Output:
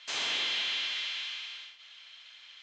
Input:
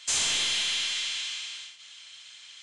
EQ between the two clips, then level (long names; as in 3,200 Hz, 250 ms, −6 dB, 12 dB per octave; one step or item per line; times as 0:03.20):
band-pass filter 270–5,100 Hz
high-frequency loss of the air 130 metres
0.0 dB